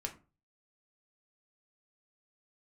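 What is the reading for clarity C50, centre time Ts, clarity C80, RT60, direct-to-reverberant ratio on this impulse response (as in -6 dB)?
13.5 dB, 10 ms, 19.0 dB, 0.35 s, 2.0 dB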